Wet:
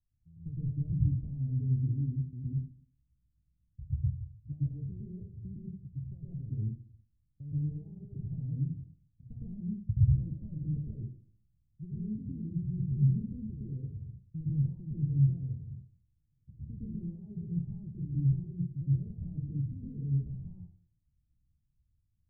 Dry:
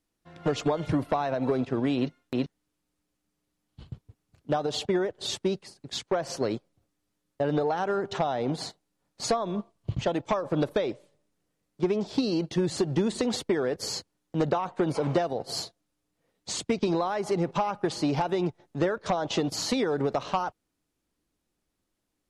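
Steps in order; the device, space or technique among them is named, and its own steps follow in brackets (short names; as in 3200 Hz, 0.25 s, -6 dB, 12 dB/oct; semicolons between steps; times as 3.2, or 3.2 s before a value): club heard from the street (limiter -23 dBFS, peak gain reduction 7.5 dB; LPF 130 Hz 24 dB/oct; reverb RT60 0.55 s, pre-delay 0.107 s, DRR -7.5 dB); gain +4 dB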